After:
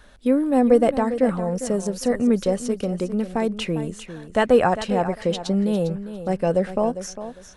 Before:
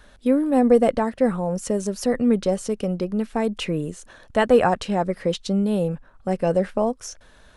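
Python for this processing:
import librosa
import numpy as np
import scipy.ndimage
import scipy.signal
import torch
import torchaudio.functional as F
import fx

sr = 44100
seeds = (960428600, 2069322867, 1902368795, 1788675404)

y = fx.echo_feedback(x, sr, ms=402, feedback_pct=21, wet_db=-12)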